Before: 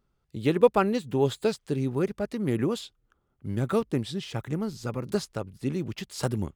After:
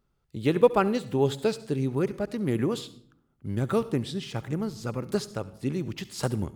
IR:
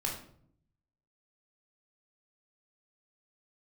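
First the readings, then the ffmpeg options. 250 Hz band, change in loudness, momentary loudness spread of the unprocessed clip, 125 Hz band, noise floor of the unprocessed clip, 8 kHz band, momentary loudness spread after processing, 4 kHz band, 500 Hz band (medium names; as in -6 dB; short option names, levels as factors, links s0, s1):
0.0 dB, 0.0 dB, 12 LU, +0.5 dB, -74 dBFS, 0.0 dB, 12 LU, 0.0 dB, 0.0 dB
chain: -filter_complex "[0:a]asplit=2[s0][s1];[1:a]atrim=start_sample=2205,highshelf=f=4700:g=7,adelay=68[s2];[s1][s2]afir=irnorm=-1:irlink=0,volume=0.0891[s3];[s0][s3]amix=inputs=2:normalize=0"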